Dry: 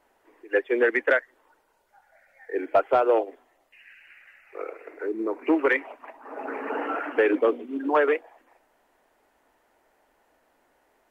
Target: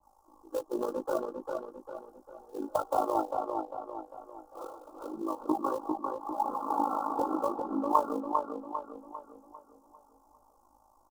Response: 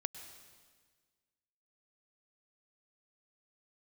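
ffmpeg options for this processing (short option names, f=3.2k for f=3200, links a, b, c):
-filter_complex "[0:a]flanger=delay=19.5:depth=2.6:speed=2.9,aecho=1:1:3.6:0.87,flanger=delay=0.4:depth=6:regen=56:speed=0.77:shape=triangular,asuperstop=centerf=2500:order=12:qfactor=0.66,acrossover=split=230|510|1500[a][b][c][d];[c]acrusher=bits=4:mode=log:mix=0:aa=0.000001[e];[a][b][e][d]amix=inputs=4:normalize=0,acompressor=threshold=-27dB:ratio=4,equalizer=f=125:t=o:w=1:g=8,equalizer=f=250:t=o:w=1:g=-6,equalizer=f=500:t=o:w=1:g=-10,equalizer=f=1k:t=o:w=1:g=9,equalizer=f=2k:t=o:w=1:g=-12,tremolo=f=53:d=0.71,asplit=2[f][g];[g]adelay=399,lowpass=f=3k:p=1,volume=-4dB,asplit=2[h][i];[i]adelay=399,lowpass=f=3k:p=1,volume=0.45,asplit=2[j][k];[k]adelay=399,lowpass=f=3k:p=1,volume=0.45,asplit=2[l][m];[m]adelay=399,lowpass=f=3k:p=1,volume=0.45,asplit=2[n][o];[o]adelay=399,lowpass=f=3k:p=1,volume=0.45,asplit=2[p][q];[q]adelay=399,lowpass=f=3k:p=1,volume=0.45[r];[f][h][j][l][n][p][r]amix=inputs=7:normalize=0,adynamicequalizer=threshold=0.00178:dfrequency=1800:dqfactor=0.7:tfrequency=1800:tqfactor=0.7:attack=5:release=100:ratio=0.375:range=3:mode=cutabove:tftype=highshelf,volume=9dB"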